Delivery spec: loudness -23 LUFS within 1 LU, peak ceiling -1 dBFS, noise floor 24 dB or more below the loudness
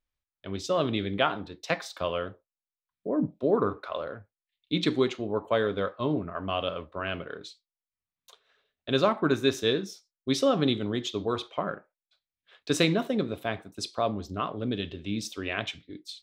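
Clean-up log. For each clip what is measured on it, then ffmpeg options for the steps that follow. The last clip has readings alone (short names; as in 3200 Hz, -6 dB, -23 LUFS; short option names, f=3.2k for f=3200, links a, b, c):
loudness -29.5 LUFS; peak -8.5 dBFS; loudness target -23.0 LUFS
-> -af "volume=6.5dB"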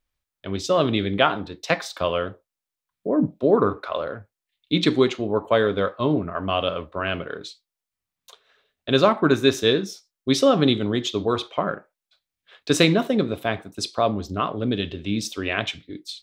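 loudness -23.0 LUFS; peak -2.0 dBFS; noise floor -88 dBFS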